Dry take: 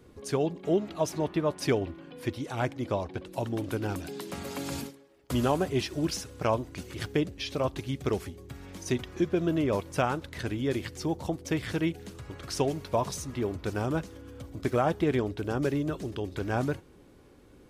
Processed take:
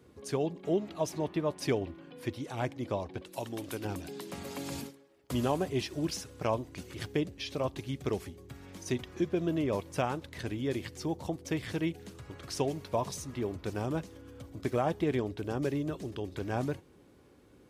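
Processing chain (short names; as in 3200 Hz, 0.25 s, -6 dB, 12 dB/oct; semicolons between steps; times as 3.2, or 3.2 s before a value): dynamic EQ 1400 Hz, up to -5 dB, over -52 dBFS, Q 4.3; HPF 64 Hz; 3.22–3.85 tilt +2 dB/oct; gain -3.5 dB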